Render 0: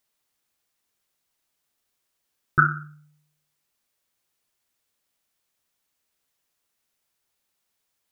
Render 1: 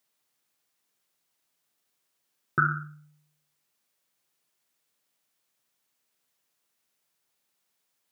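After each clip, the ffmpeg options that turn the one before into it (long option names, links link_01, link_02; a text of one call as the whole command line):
ffmpeg -i in.wav -af "highpass=frequency=110:width=0.5412,highpass=frequency=110:width=1.3066,alimiter=limit=-11dB:level=0:latency=1:release=101" out.wav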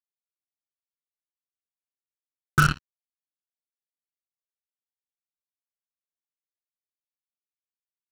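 ffmpeg -i in.wav -af "acrusher=bits=3:mix=0:aa=0.5,asubboost=boost=4.5:cutoff=190,volume=3.5dB" out.wav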